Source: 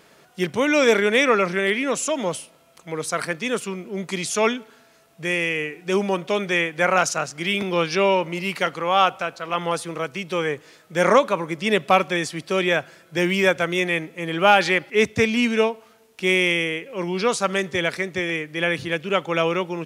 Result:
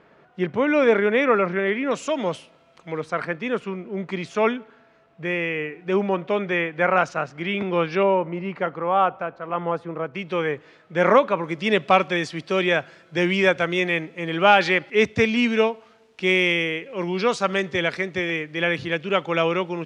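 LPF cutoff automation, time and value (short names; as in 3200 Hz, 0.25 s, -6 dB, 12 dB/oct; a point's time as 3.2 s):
1900 Hz
from 1.91 s 3700 Hz
from 3 s 2200 Hz
from 8.03 s 1300 Hz
from 10.15 s 2800 Hz
from 11.44 s 4700 Hz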